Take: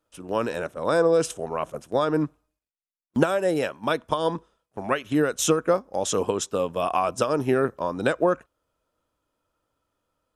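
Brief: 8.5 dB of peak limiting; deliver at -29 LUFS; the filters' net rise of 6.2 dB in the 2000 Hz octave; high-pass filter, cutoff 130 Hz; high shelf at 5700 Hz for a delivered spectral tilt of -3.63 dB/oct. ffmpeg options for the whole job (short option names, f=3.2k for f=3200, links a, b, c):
-af "highpass=130,equalizer=f=2k:t=o:g=8.5,highshelf=f=5.7k:g=3.5,volume=-4dB,alimiter=limit=-15.5dB:level=0:latency=1"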